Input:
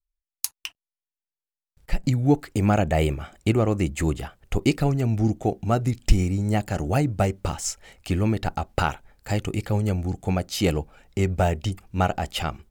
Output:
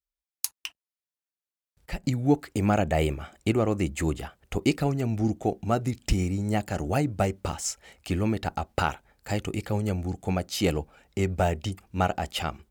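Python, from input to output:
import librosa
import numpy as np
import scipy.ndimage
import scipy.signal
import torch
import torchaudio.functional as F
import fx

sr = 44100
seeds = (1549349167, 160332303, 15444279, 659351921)

y = scipy.signal.sosfilt(scipy.signal.butter(2, 54.0, 'highpass', fs=sr, output='sos'), x)
y = fx.peak_eq(y, sr, hz=120.0, db=-4.0, octaves=0.77)
y = y * 10.0 ** (-2.0 / 20.0)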